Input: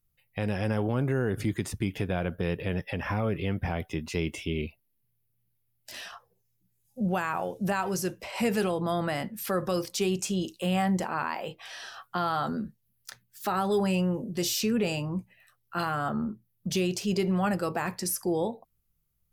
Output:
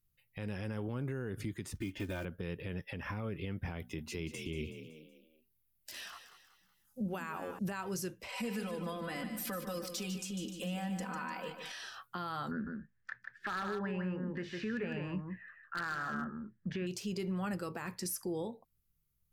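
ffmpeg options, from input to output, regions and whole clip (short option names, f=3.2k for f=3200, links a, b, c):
-filter_complex "[0:a]asettb=1/sr,asplit=3[a][b][c];[a]atrim=end=1.754[d];[b]atrim=start=1.75:end=2.25,asetpts=PTS-STARTPTS,afade=t=in:d=0.004:c=qsin,afade=t=out:st=0.496:d=0.004:c=qsin,lowpass=6.5k,acrusher=bits=6:mode=log:mix=0:aa=0.000001,aecho=1:1:3.3:0.92,atrim=end_sample=22050[e];[c]atrim=start=2.246[f];[d][e]acrossfade=d=0.004:c1=hsin:c2=qsin[g];[g][f]acrossfade=d=0.004:c1=qsin:c2=hsin,asettb=1/sr,asplit=3[h][i][j];[h]atrim=end=3.794[k];[i]atrim=start=3.79:end=7.59,asetpts=PTS-STARTPTS,afade=t=in:d=0.004:c=qsin,afade=t=out:st=3.796:d=0.004:c=qsin,highshelf=f=11k:g=5.5,bandreject=f=60:t=h:w=6,bandreject=f=120:t=h:w=6,bandreject=f=180:t=h:w=6,bandreject=f=240:t=h:w=6,asplit=5[l][m][n][o][p];[m]adelay=187,afreqshift=40,volume=-12dB[q];[n]adelay=374,afreqshift=80,volume=-19.3dB[r];[o]adelay=561,afreqshift=120,volume=-26.7dB[s];[p]adelay=748,afreqshift=160,volume=-34dB[t];[l][q][r][s][t]amix=inputs=5:normalize=0,atrim=end_sample=167580[u];[j]atrim=start=7.586[v];[k][u]acrossfade=d=0.004:c1=hsin:c2=qsin[w];[w][v]acrossfade=d=0.004:c1=qsin:c2=hsin,asettb=1/sr,asplit=3[x][y][z];[x]atrim=end=8.284[aa];[y]atrim=start=8.28:end=11.72,asetpts=PTS-STARTPTS,afade=t=in:d=0.004:c=qsin,afade=t=out:st=3.436:d=0.004:c=qsin,aecho=1:1:4:0.88,atrim=end_sample=151704,acompressor=threshold=-34dB:ratio=2.5:attack=3.2:release=140:knee=1:detection=peak,aecho=1:1:149|298|447|596|745:0.376|0.177|0.083|0.039|0.0183,atrim=end_sample=151704[ab];[z]atrim=start=11.716[ac];[aa][ab]acrossfade=d=0.004:c1=hsin:c2=qsin[ad];[ad][ac]acrossfade=d=0.004:c1=qsin:c2=hsin,asettb=1/sr,asplit=3[ae][af][ag];[ae]atrim=end=12.514[ah];[af]atrim=start=12.51:end=16.87,asetpts=PTS-STARTPTS,afade=t=in:d=0.004:c=qsin,afade=t=out:st=4.356:d=0.004:c=qsin,lowpass=f=1.7k:t=q:w=8.3,aeval=exprs='0.158*(abs(mod(val(0)/0.158+3,4)-2)-1)':c=same,aecho=1:1:154:0.501,atrim=end_sample=192276[ai];[ag]atrim=start=16.866[aj];[ah][ai]acrossfade=d=0.004:c1=hsin:c2=qsin[ak];[ak][aj]acrossfade=d=0.004:c1=qsin:c2=hsin,equalizer=f=700:w=2.3:g=-7,alimiter=level_in=1.5dB:limit=-24dB:level=0:latency=1:release=323,volume=-1.5dB,volume=-3.5dB"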